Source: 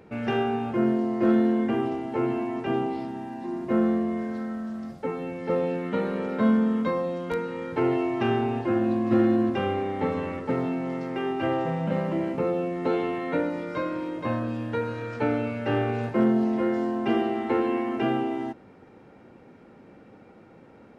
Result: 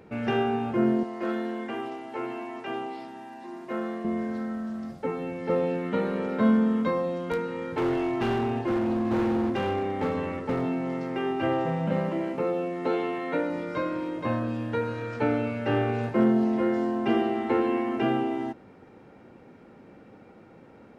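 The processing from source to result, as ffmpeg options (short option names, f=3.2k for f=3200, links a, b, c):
-filter_complex "[0:a]asettb=1/sr,asplit=3[a][b][c];[a]atrim=end=1.034[d];[b]atrim=start=1.03:end=4.05,asetpts=PTS-STARTPTS,afade=t=in:d=0.004:c=qsin,afade=t=out:st=3.016:d=0.004:c=qsin,highpass=f=850:p=1[e];[c]atrim=start=4.046[f];[d][e]acrossfade=d=0.004:c1=hsin:c2=qsin[g];[g][f]acrossfade=d=0.004:c1=qsin:c2=hsin,asettb=1/sr,asplit=3[h][i][j];[h]atrim=end=7.344[k];[i]atrim=start=7.34:end=10.62,asetpts=PTS-STARTPTS,afade=t=in:d=0.004:c=qsin,afade=t=out:st=3.276:d=0.004:c=qsin,asoftclip=type=hard:threshold=-22.5dB[l];[j]atrim=start=10.616[m];[k][l]acrossfade=d=0.004:c1=hsin:c2=qsin[n];[n][m]acrossfade=d=0.004:c1=qsin:c2=hsin,asettb=1/sr,asplit=3[o][p][q];[o]atrim=end=12.094[r];[p]atrim=start=12.09:end=13.5,asetpts=PTS-STARTPTS,afade=t=in:d=0.004:c=qsin,afade=t=out:st=1.406:d=0.004:c=qsin,lowshelf=f=150:g=-11.5[s];[q]atrim=start=13.496[t];[r][s]acrossfade=d=0.004:c1=hsin:c2=qsin[u];[u][t]acrossfade=d=0.004:c1=qsin:c2=hsin"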